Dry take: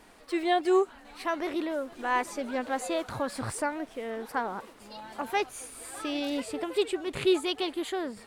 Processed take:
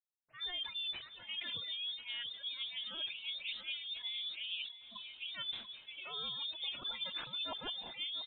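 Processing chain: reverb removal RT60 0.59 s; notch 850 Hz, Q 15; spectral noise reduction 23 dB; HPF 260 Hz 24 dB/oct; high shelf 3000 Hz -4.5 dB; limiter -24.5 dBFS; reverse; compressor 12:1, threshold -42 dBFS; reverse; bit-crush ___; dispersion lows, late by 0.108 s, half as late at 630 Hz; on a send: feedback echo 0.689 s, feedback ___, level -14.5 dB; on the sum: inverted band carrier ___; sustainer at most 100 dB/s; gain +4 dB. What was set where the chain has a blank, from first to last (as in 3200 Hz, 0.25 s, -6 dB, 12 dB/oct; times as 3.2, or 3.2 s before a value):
11-bit, 32%, 3900 Hz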